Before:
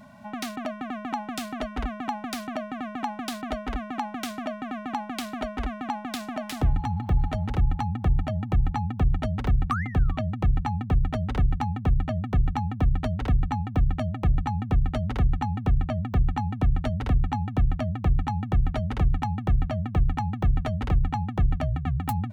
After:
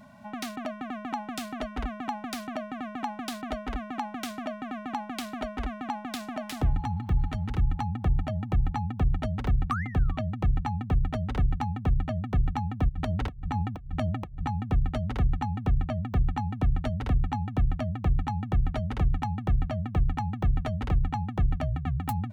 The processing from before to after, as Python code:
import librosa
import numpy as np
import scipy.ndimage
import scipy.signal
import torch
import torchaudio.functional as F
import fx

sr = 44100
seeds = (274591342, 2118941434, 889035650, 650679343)

y = fx.peak_eq(x, sr, hz=610.0, db=-9.0, octaves=0.71, at=(6.97, 7.78))
y = fx.over_compress(y, sr, threshold_db=-27.0, ratio=-0.5, at=(12.88, 14.49), fade=0.02)
y = F.gain(torch.from_numpy(y), -2.5).numpy()